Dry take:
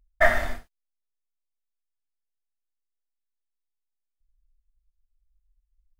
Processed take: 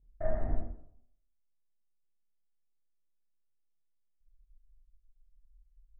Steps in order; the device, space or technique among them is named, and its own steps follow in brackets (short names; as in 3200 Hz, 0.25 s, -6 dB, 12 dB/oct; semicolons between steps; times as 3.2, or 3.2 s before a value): television next door (compressor 4:1, threshold -27 dBFS, peak gain reduction 12.5 dB; LPF 380 Hz 12 dB/oct; reverb RT60 0.65 s, pre-delay 25 ms, DRR -7 dB); gain -2 dB